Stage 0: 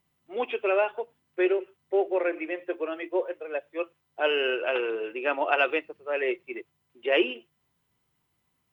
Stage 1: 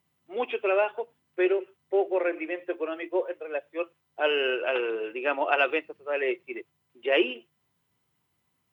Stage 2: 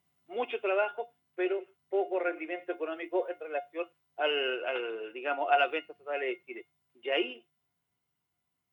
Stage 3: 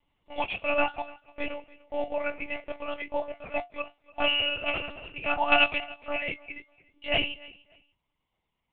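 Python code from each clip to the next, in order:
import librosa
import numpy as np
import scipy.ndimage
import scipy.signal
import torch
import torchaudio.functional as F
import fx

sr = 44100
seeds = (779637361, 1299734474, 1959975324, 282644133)

y1 = scipy.signal.sosfilt(scipy.signal.butter(2, 65.0, 'highpass', fs=sr, output='sos'), x)
y2 = fx.rider(y1, sr, range_db=5, speed_s=2.0)
y2 = fx.comb_fb(y2, sr, f0_hz=710.0, decay_s=0.2, harmonics='all', damping=0.0, mix_pct=80)
y2 = y2 * librosa.db_to_amplitude(6.5)
y3 = fx.fixed_phaser(y2, sr, hz=1600.0, stages=6)
y3 = fx.echo_feedback(y3, sr, ms=292, feedback_pct=22, wet_db=-21.5)
y3 = fx.lpc_monotone(y3, sr, seeds[0], pitch_hz=290.0, order=10)
y3 = y3 * librosa.db_to_amplitude(8.0)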